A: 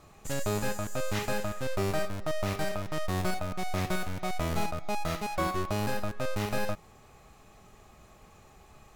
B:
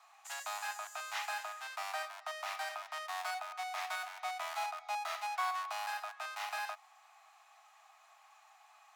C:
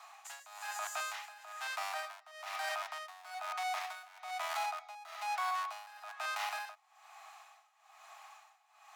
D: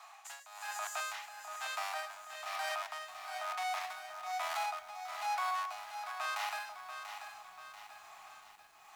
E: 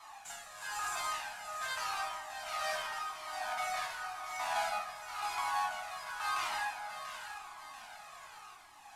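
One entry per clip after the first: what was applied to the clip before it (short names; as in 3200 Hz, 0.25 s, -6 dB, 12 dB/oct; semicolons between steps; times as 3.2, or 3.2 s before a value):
steep high-pass 680 Hz 96 dB/oct; high shelf 7000 Hz -8 dB; gain -2 dB
limiter -36 dBFS, peak gain reduction 10.5 dB; tremolo 1.1 Hz, depth 88%; gain +8.5 dB
lo-fi delay 0.688 s, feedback 55%, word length 10-bit, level -8.5 dB
CVSD 64 kbps; plate-style reverb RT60 1.5 s, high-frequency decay 0.55×, DRR -2.5 dB; cascading flanger falling 0.92 Hz; gain +3 dB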